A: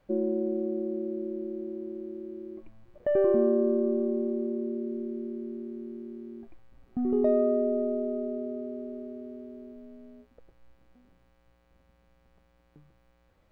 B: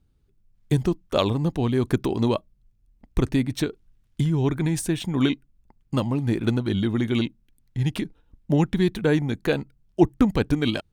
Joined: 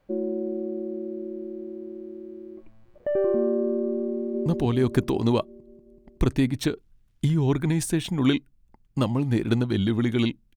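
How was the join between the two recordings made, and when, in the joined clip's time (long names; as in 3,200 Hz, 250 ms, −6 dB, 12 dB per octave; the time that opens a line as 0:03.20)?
A
0:04.15–0:04.46: delay throw 190 ms, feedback 70%, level −4 dB
0:04.46: continue with B from 0:01.42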